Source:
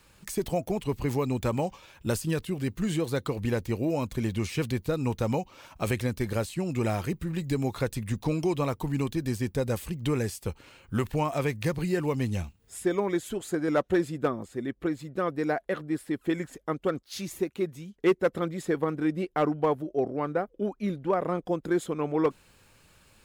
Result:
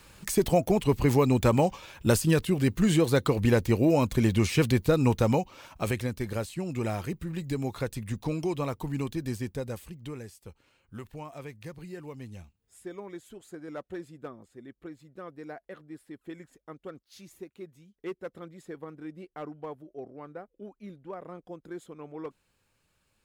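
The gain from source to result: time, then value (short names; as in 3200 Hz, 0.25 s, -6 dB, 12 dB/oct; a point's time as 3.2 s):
5.05 s +5.5 dB
6.15 s -3 dB
9.34 s -3 dB
10.29 s -14 dB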